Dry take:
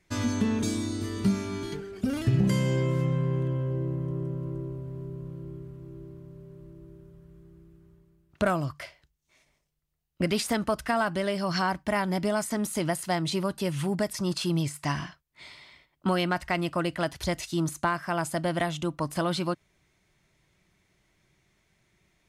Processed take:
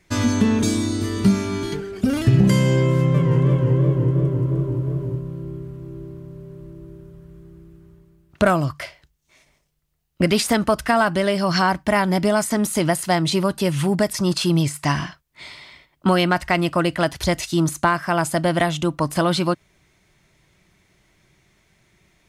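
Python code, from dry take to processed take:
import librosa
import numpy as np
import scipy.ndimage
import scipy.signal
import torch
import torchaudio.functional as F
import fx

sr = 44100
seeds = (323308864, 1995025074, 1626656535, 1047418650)

y = fx.echo_warbled(x, sr, ms=171, feedback_pct=65, rate_hz=2.8, cents=189, wet_db=-5.0, at=(2.97, 5.19))
y = y * 10.0 ** (8.5 / 20.0)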